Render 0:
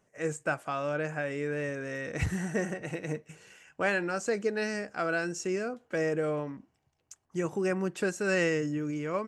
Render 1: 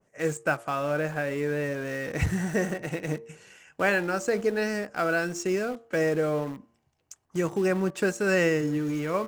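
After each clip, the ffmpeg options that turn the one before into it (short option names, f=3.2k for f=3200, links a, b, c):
-filter_complex "[0:a]bandreject=f=115.1:t=h:w=4,bandreject=f=230.2:t=h:w=4,bandreject=f=345.3:t=h:w=4,bandreject=f=460.4:t=h:w=4,bandreject=f=575.5:t=h:w=4,bandreject=f=690.6:t=h:w=4,bandreject=f=805.7:t=h:w=4,bandreject=f=920.8:t=h:w=4,bandreject=f=1.0359k:t=h:w=4,bandreject=f=1.151k:t=h:w=4,bandreject=f=1.2661k:t=h:w=4,asplit=2[a][b];[b]acrusher=bits=5:mix=0:aa=0.000001,volume=-11.5dB[c];[a][c]amix=inputs=2:normalize=0,adynamicequalizer=threshold=0.0112:dfrequency=1700:dqfactor=0.7:tfrequency=1700:tqfactor=0.7:attack=5:release=100:ratio=0.375:range=2:mode=cutabove:tftype=highshelf,volume=2.5dB"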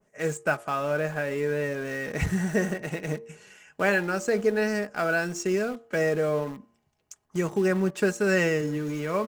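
-af "aecho=1:1:4.8:0.34"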